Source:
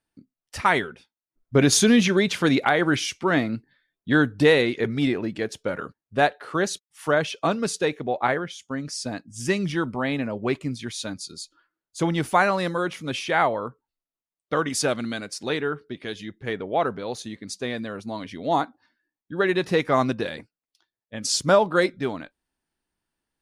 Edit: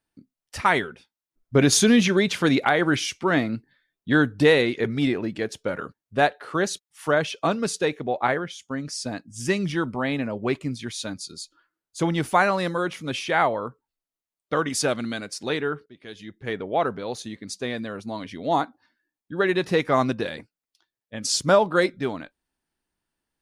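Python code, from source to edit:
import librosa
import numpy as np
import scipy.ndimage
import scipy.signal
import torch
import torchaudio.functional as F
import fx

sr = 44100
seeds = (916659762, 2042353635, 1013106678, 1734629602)

y = fx.edit(x, sr, fx.fade_in_from(start_s=15.86, length_s=0.69, floor_db=-18.0), tone=tone)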